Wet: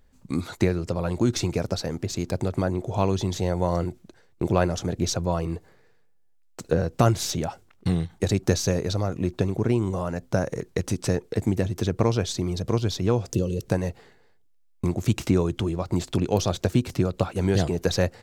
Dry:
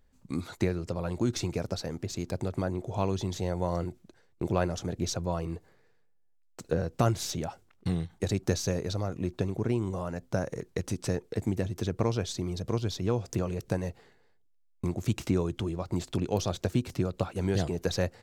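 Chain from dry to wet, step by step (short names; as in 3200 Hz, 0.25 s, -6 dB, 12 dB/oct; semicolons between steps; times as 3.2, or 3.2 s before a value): spectral gain 13.33–13.61, 600–2600 Hz -16 dB; gain +6 dB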